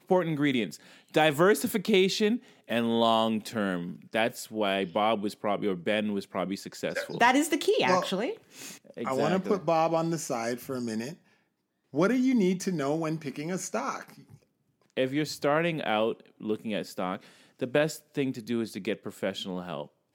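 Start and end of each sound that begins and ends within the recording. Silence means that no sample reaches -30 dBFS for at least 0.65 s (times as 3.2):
11.95–14.01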